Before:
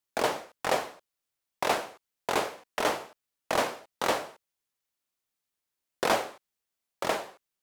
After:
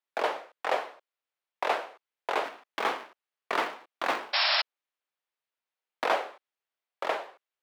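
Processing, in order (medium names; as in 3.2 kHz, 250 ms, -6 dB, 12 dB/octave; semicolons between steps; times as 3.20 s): 2.44–6.05 s: cycle switcher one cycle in 2, inverted; three-band isolator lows -22 dB, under 360 Hz, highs -16 dB, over 3.8 kHz; 4.33–4.62 s: painted sound noise 570–5500 Hz -25 dBFS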